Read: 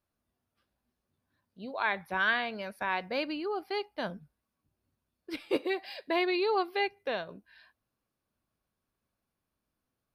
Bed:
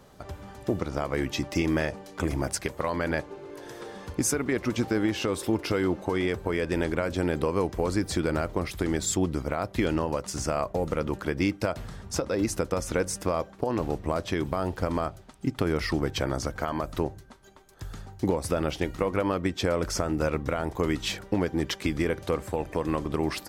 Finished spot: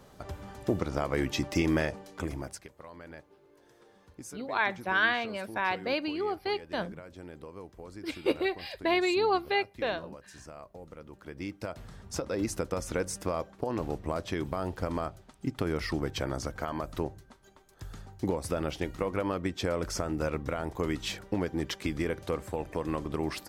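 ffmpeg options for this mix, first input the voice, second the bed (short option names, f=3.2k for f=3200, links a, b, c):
-filter_complex "[0:a]adelay=2750,volume=2dB[a];[1:a]volume=13.5dB,afade=t=out:st=1.75:d=0.93:silence=0.125893,afade=t=in:st=11.13:d=1.2:silence=0.188365[b];[a][b]amix=inputs=2:normalize=0"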